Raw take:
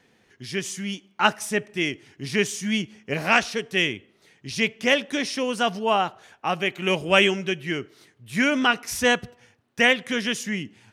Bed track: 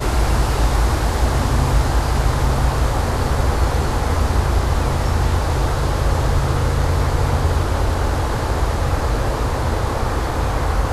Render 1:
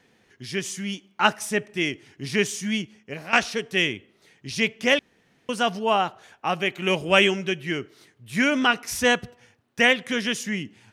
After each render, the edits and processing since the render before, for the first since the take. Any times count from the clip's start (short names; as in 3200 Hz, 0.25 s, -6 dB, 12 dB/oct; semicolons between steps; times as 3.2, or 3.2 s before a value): 2.59–3.33 fade out, to -14 dB; 4.99–5.49 room tone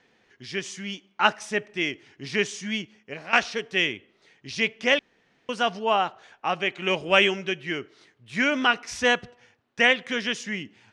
Bessel low-pass 5200 Hz, order 4; bell 110 Hz -7 dB 2.9 oct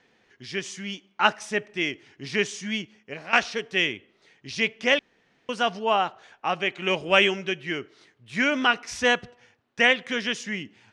nothing audible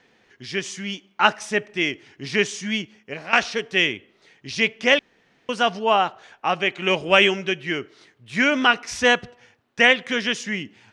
gain +4 dB; limiter -2 dBFS, peak gain reduction 2.5 dB